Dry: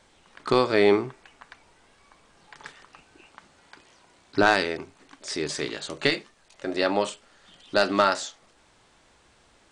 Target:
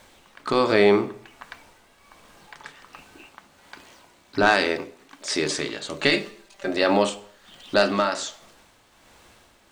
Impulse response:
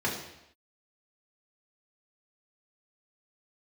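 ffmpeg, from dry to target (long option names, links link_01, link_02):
-filter_complex "[0:a]asettb=1/sr,asplit=3[link_01][link_02][link_03];[link_01]atrim=end=4.494[link_04];[link_02]atrim=start=4.49:end=5.58,asetpts=PTS-STARTPTS,afade=type=in:duration=0.004:curve=qsin,afade=type=out:start_time=1.086:duration=0.004:curve=qsin,lowshelf=frequency=140:gain=-7.5[link_05];[link_03]atrim=start=5.576[link_06];[link_04][link_05]acrossfade=duration=0.004:curve1=hsin:curve2=qsin[link_07];[link_07][link_06]acrossfade=duration=0.004:curve1=qsin:curve2=hsin,asettb=1/sr,asplit=3[link_08][link_09][link_10];[link_08]atrim=end=6.134[link_11];[link_09]atrim=start=6.13:end=6.68,asetpts=PTS-STARTPTS,afade=type=in:duration=0.004:curve=qsin,afade=type=out:start_time=0.546:duration=0.004:curve=qsin,aecho=1:1:5.1:0.96,atrim=end_sample=24255[link_12];[link_10]atrim=start=6.676[link_13];[link_11][link_12]acrossfade=duration=0.004:curve1=hsin:curve2=qsin[link_14];[link_14][link_13]acrossfade=duration=0.004:curve1=qsin:curve2=hsin,asplit=2[link_15][link_16];[link_16]alimiter=limit=-17dB:level=0:latency=1:release=35,volume=2dB[link_17];[link_15][link_17]amix=inputs=2:normalize=0,acrusher=bits=8:mix=0:aa=0.5,tremolo=f=1.3:d=0.5,asplit=2[link_18][link_19];[1:a]atrim=start_sample=2205,asetrate=61740,aresample=44100[link_20];[link_19][link_20]afir=irnorm=-1:irlink=0,volume=-16dB[link_21];[link_18][link_21]amix=inputs=2:normalize=0,volume=-1.5dB"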